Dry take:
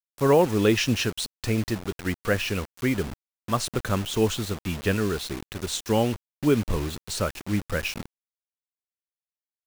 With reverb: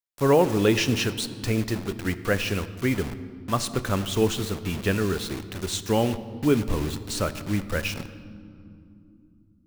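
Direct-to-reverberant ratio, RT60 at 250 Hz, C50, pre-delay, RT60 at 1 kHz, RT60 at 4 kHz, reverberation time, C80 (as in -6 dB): 12.0 dB, 4.8 s, 13.5 dB, 3 ms, 2.6 s, 1.6 s, 3.0 s, 14.5 dB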